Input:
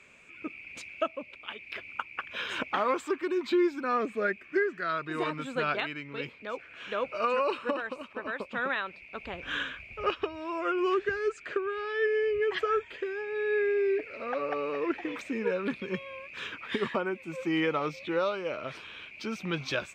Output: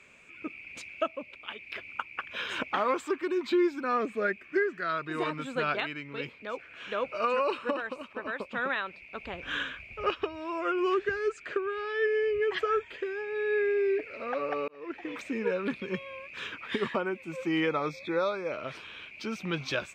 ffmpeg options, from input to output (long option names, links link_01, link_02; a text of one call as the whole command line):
ffmpeg -i in.wav -filter_complex "[0:a]asettb=1/sr,asplit=3[link_01][link_02][link_03];[link_01]atrim=end=17.694[link_04];[link_02]atrim=start=17.69:end=18.52,asetpts=PTS-STARTPTS,afade=type=in:duration=0.004:curve=qsin,afade=type=out:start_time=0.826:duration=0.004:curve=qsin,asuperstop=centerf=2900:order=20:qfactor=4.8[link_05];[link_03]atrim=start=18.516[link_06];[link_04][link_05]acrossfade=duration=0.004:curve1=hsin:curve2=qsin[link_07];[link_07][link_06]acrossfade=duration=0.004:curve1=qsin:curve2=hsin,asplit=2[link_08][link_09];[link_08]atrim=end=14.68,asetpts=PTS-STARTPTS,afade=type=out:start_time=14.676:duration=0.004:curve=hsin[link_10];[link_09]atrim=start=14.68,asetpts=PTS-STARTPTS,afade=type=in:duration=0.55[link_11];[link_10][link_11]concat=n=2:v=0:a=1" out.wav